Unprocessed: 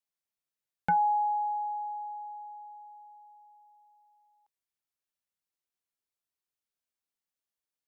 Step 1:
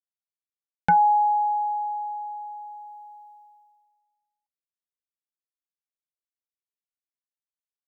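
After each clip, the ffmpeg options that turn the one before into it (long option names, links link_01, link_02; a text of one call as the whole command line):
ffmpeg -i in.wav -af "agate=range=-33dB:threshold=-54dB:ratio=3:detection=peak,volume=7.5dB" out.wav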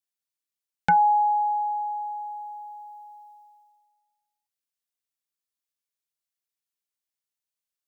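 ffmpeg -i in.wav -af "highshelf=frequency=2100:gain=8.5,volume=-2dB" out.wav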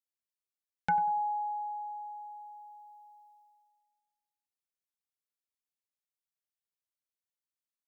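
ffmpeg -i in.wav -filter_complex "[0:a]asplit=2[link_01][link_02];[link_02]adelay=95,lowpass=frequency=870:poles=1,volume=-12.5dB,asplit=2[link_03][link_04];[link_04]adelay=95,lowpass=frequency=870:poles=1,volume=0.36,asplit=2[link_05][link_06];[link_06]adelay=95,lowpass=frequency=870:poles=1,volume=0.36,asplit=2[link_07][link_08];[link_08]adelay=95,lowpass=frequency=870:poles=1,volume=0.36[link_09];[link_01][link_03][link_05][link_07][link_09]amix=inputs=5:normalize=0,volume=-9dB" out.wav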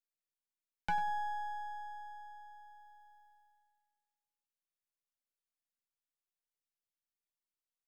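ffmpeg -i in.wav -af "aeval=exprs='if(lt(val(0),0),0.251*val(0),val(0))':channel_layout=same,volume=-2.5dB" out.wav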